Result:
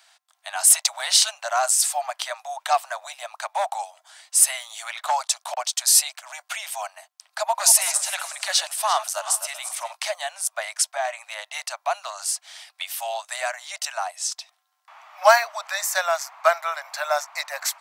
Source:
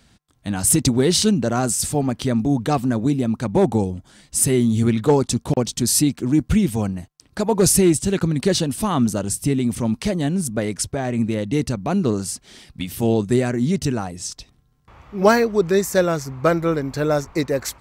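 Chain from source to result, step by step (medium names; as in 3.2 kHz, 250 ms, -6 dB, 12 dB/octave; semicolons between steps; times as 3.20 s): 7.41–9.93 s: backward echo that repeats 190 ms, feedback 49%, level -11.5 dB; steep high-pass 630 Hz 96 dB/octave; trim +3 dB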